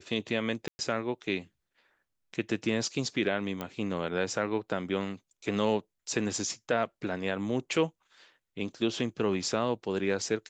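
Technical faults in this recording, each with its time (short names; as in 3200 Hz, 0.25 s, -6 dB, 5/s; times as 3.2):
0.68–0.79 gap 0.11 s
3.61 pop -20 dBFS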